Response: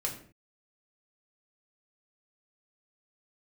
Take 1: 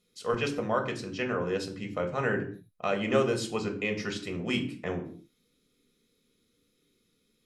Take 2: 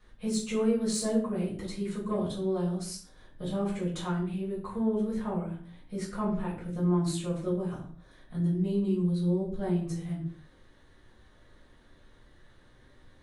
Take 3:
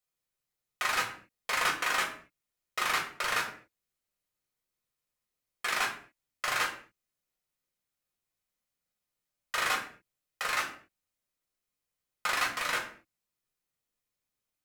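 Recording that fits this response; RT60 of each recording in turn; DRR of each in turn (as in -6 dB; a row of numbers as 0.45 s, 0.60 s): 3; 0.50 s, 0.50 s, 0.50 s; 3.5 dB, -8.5 dB, -1.0 dB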